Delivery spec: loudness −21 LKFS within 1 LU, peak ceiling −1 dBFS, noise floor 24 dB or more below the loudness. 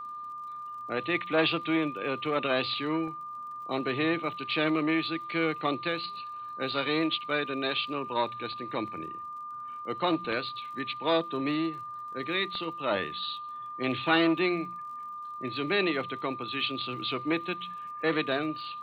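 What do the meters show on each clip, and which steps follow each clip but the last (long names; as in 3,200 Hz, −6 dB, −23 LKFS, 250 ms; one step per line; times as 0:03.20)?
crackle rate 44 per second; interfering tone 1,200 Hz; level of the tone −37 dBFS; integrated loudness −30.5 LKFS; sample peak −11.5 dBFS; target loudness −21.0 LKFS
→ click removal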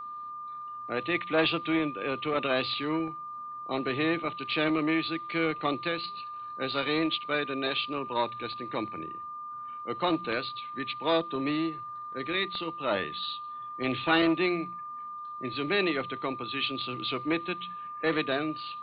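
crackle rate 0 per second; interfering tone 1,200 Hz; level of the tone −37 dBFS
→ notch filter 1,200 Hz, Q 30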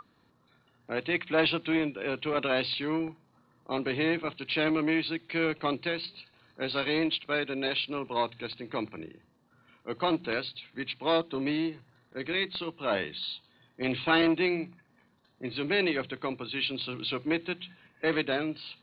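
interfering tone none found; integrated loudness −30.5 LKFS; sample peak −12.0 dBFS; target loudness −21.0 LKFS
→ level +9.5 dB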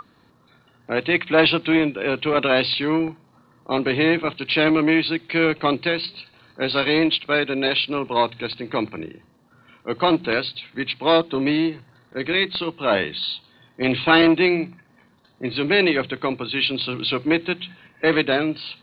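integrated loudness −21.0 LKFS; sample peak −2.5 dBFS; background noise floor −58 dBFS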